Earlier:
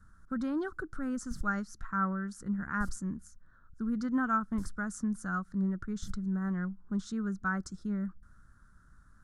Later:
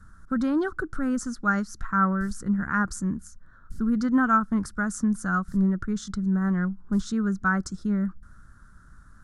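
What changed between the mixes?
speech +8.5 dB; background: entry +0.90 s

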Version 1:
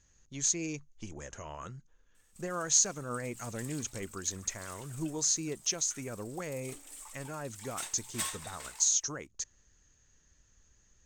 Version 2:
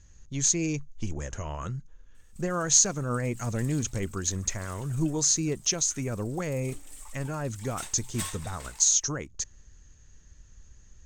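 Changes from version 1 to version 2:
speech +5.0 dB; master: add low shelf 170 Hz +11.5 dB

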